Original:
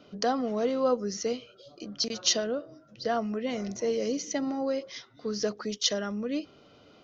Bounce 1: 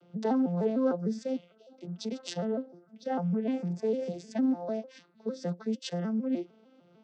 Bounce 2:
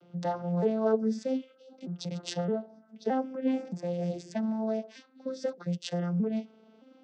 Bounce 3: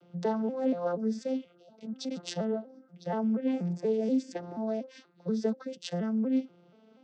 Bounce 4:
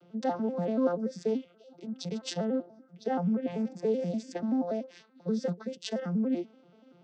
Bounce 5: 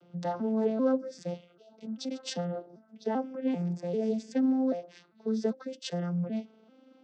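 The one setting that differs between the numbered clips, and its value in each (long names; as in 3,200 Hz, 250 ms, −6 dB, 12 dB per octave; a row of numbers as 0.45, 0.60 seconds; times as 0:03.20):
vocoder with an arpeggio as carrier, a note every: 151, 619, 240, 96, 393 milliseconds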